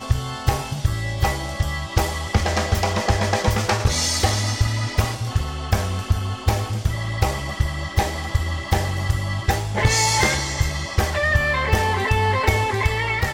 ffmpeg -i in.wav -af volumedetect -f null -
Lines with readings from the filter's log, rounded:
mean_volume: -21.2 dB
max_volume: -5.5 dB